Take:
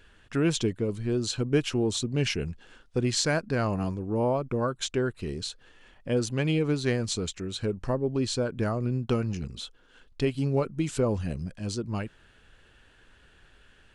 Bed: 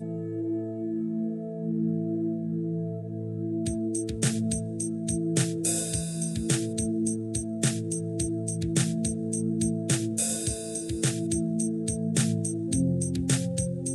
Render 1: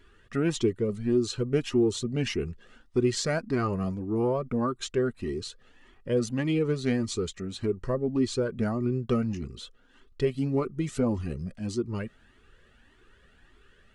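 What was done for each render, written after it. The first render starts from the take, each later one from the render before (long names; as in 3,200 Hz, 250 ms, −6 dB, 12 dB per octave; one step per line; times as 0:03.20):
hollow resonant body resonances 240/370/1,200/1,900 Hz, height 9 dB, ringing for 30 ms
flanger whose copies keep moving one way rising 1.7 Hz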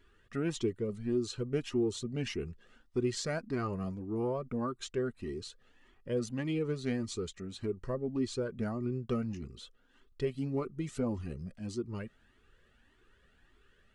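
level −7 dB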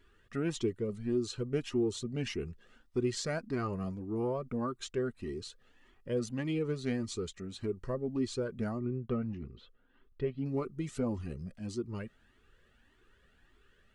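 0:08.79–0:10.46: high-frequency loss of the air 350 metres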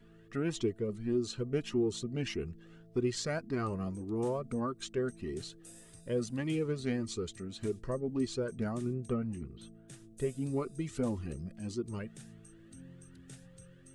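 mix in bed −26.5 dB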